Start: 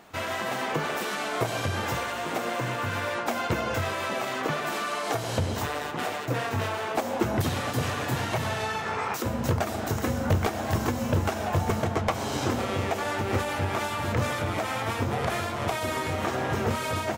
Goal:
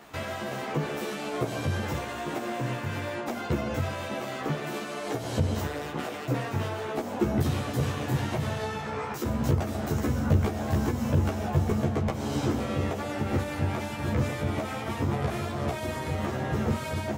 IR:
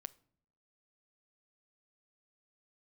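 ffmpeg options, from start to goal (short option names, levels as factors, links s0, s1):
-filter_complex "[0:a]acrossover=split=430[s0][s1];[s1]acompressor=threshold=0.0112:ratio=3[s2];[s0][s2]amix=inputs=2:normalize=0,asplit=2[s3][s4];[1:a]atrim=start_sample=2205,adelay=14[s5];[s4][s5]afir=irnorm=-1:irlink=0,volume=1.5[s6];[s3][s6]amix=inputs=2:normalize=0"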